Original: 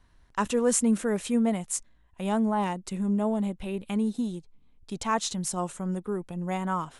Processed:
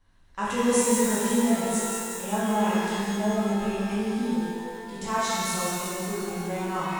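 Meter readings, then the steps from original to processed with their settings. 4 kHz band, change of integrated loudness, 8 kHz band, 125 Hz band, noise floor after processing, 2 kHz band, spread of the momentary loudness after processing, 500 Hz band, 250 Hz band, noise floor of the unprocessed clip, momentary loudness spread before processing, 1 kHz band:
+5.5 dB, +2.5 dB, +3.5 dB, +0.5 dB, −48 dBFS, +7.0 dB, 8 LU, +3.0 dB, +1.5 dB, −60 dBFS, 10 LU, +3.5 dB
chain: delay with a high-pass on its return 182 ms, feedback 68%, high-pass 3,600 Hz, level −7 dB
reverb with rising layers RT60 2.2 s, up +12 semitones, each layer −8 dB, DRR −9 dB
level −7.5 dB

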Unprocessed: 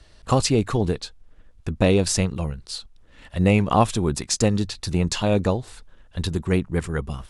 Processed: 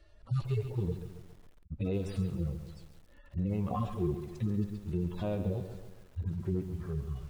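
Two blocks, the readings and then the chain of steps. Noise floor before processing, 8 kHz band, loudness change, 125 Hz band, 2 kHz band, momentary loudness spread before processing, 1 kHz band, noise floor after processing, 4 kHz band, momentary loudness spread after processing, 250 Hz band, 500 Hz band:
−52 dBFS, below −30 dB, −13.0 dB, −9.5 dB, −23.5 dB, 14 LU, −18.5 dB, −58 dBFS, −26.5 dB, 12 LU, −12.0 dB, −15.0 dB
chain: harmonic-percussive split with one part muted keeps harmonic
high-shelf EQ 4,000 Hz −11 dB
brickwall limiter −17.5 dBFS, peak gain reduction 9 dB
hollow resonant body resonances 350/570/1,300 Hz, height 6 dB, ringing for 75 ms
feedback echo at a low word length 137 ms, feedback 55%, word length 8 bits, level −9.5 dB
level −6.5 dB

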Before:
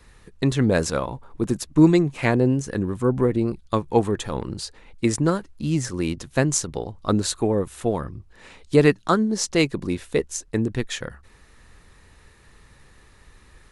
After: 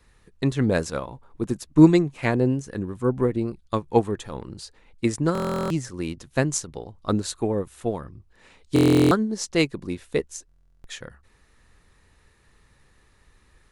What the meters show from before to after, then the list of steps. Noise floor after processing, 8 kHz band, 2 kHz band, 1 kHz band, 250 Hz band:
−60 dBFS, −5.0 dB, −3.0 dB, −2.0 dB, −0.5 dB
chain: buffer that repeats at 0:05.33/0:08.74/0:10.47, samples 1,024, times 15
expander for the loud parts 1.5 to 1, over −28 dBFS
level +2 dB

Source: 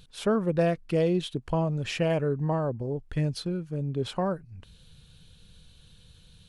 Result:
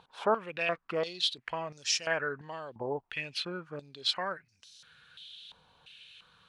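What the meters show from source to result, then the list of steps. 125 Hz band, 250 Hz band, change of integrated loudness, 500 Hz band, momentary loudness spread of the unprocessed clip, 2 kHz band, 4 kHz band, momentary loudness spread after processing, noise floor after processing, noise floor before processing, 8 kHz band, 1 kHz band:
−20.0 dB, −15.5 dB, −4.5 dB, −7.0 dB, 7 LU, +5.0 dB, +7.0 dB, 19 LU, −73 dBFS, −56 dBFS, +7.5 dB, −1.0 dB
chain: in parallel at +2.5 dB: brickwall limiter −24 dBFS, peak gain reduction 11.5 dB
on the sum: band-pass on a step sequencer 2.9 Hz 920–5,600 Hz
level +8.5 dB

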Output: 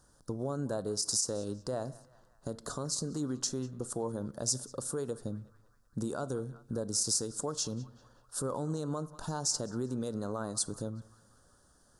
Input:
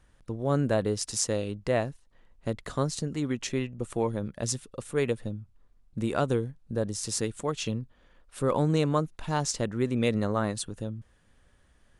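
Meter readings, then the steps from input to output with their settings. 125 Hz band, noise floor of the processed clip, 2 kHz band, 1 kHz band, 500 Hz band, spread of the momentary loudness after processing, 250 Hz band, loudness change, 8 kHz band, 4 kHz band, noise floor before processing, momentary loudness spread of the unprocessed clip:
−8.5 dB, −65 dBFS, −13.5 dB, −9.0 dB, −8.0 dB, 12 LU, −7.0 dB, −5.0 dB, +1.5 dB, −1.0 dB, −63 dBFS, 11 LU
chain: downward compressor, threshold −30 dBFS, peak gain reduction 10 dB
low-shelf EQ 78 Hz −11.5 dB
on a send: feedback echo with a band-pass in the loop 190 ms, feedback 71%, band-pass 1,600 Hz, level −18.5 dB
on the sum: rectangular room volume 870 cubic metres, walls furnished, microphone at 0.31 metres
brickwall limiter −27 dBFS, peak gain reduction 11 dB
drawn EQ curve 1,500 Hz 0 dB, 2,200 Hz −26 dB, 4,800 Hz +7 dB
level +1.5 dB

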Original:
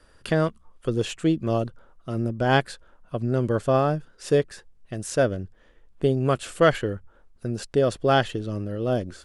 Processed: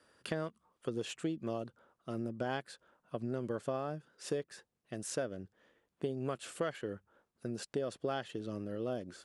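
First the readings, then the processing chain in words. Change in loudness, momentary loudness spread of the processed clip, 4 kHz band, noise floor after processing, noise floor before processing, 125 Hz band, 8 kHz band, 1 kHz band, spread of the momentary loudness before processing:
−15.0 dB, 11 LU, −13.5 dB, −84 dBFS, −57 dBFS, −18.0 dB, −8.5 dB, −16.5 dB, 14 LU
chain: high-pass filter 160 Hz 12 dB per octave
downward compressor 6 to 1, threshold −25 dBFS, peak gain reduction 12.5 dB
level −7.5 dB

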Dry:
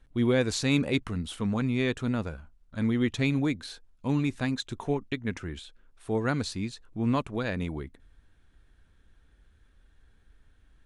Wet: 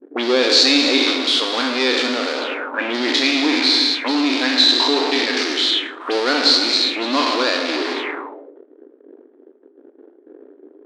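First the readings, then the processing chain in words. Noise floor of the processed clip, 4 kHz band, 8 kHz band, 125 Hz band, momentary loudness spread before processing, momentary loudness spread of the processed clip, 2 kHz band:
−52 dBFS, +25.0 dB, +13.5 dB, below −25 dB, 14 LU, 11 LU, +15.5 dB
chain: peak hold with a decay on every bin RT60 0.95 s
in parallel at −11.5 dB: fuzz pedal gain 50 dB, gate −53 dBFS
on the sum: linear-phase brick-wall high-pass 250 Hz
reverb whose tail is shaped and stops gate 340 ms flat, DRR 7 dB
envelope-controlled low-pass 340–4,500 Hz up, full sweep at −22.5 dBFS
level +2.5 dB

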